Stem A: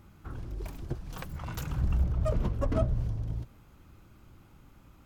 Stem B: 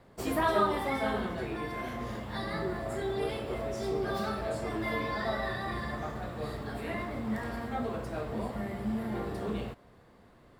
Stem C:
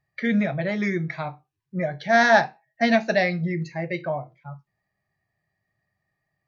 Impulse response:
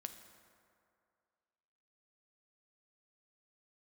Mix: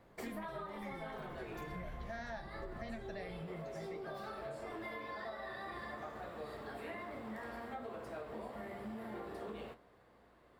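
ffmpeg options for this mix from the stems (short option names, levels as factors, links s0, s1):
-filter_complex "[0:a]aecho=1:1:5.4:0.65,volume=0.237[s0];[1:a]highshelf=f=8000:g=5.5,aeval=exprs='val(0)+0.001*(sin(2*PI*60*n/s)+sin(2*PI*2*60*n/s)/2+sin(2*PI*3*60*n/s)/3+sin(2*PI*4*60*n/s)/4+sin(2*PI*5*60*n/s)/5)':c=same,bass=f=250:g=-15,treble=f=4000:g=-7,volume=0.944[s1];[2:a]volume=0.224[s2];[s0][s1][s2]amix=inputs=3:normalize=0,lowshelf=f=280:g=4.5,flanger=delay=9.3:depth=4.4:regen=-66:speed=1:shape=triangular,acompressor=threshold=0.00891:ratio=12"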